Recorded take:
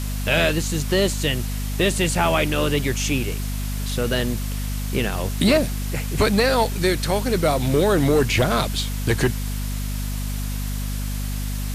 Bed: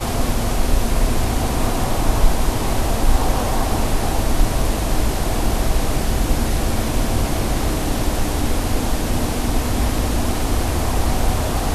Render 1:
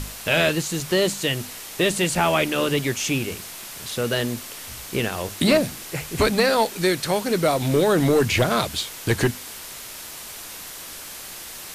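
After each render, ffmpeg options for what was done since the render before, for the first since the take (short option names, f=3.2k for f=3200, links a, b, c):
-af "bandreject=f=50:t=h:w=6,bandreject=f=100:t=h:w=6,bandreject=f=150:t=h:w=6,bandreject=f=200:t=h:w=6,bandreject=f=250:t=h:w=6"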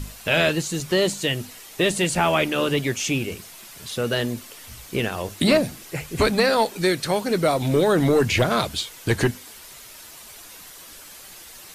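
-af "afftdn=nr=8:nf=-38"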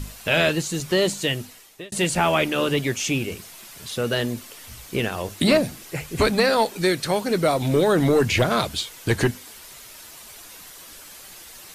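-filter_complex "[0:a]asplit=2[a][b];[a]atrim=end=1.92,asetpts=PTS-STARTPTS,afade=t=out:st=1.3:d=0.62[c];[b]atrim=start=1.92,asetpts=PTS-STARTPTS,afade=t=in:d=0.004:c=hsin[d];[c][d]concat=n=2:v=0:a=1"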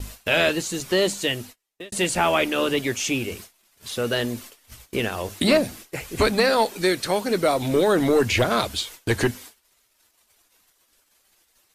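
-af "agate=range=-32dB:threshold=-39dB:ratio=16:detection=peak,equalizer=f=150:w=3.8:g=-10.5"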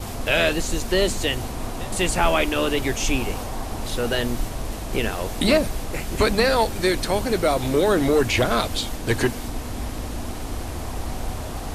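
-filter_complex "[1:a]volume=-10.5dB[a];[0:a][a]amix=inputs=2:normalize=0"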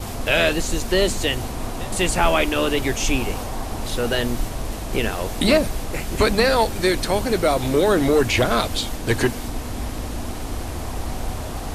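-af "volume=1.5dB"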